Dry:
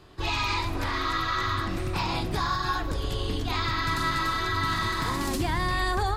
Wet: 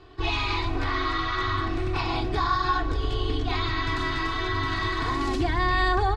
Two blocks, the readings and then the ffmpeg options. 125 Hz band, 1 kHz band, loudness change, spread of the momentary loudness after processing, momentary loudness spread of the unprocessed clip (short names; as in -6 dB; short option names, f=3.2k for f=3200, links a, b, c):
+1.0 dB, +1.5 dB, +1.0 dB, 4 LU, 4 LU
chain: -af "lowpass=4.2k,aecho=1:1:2.7:0.7"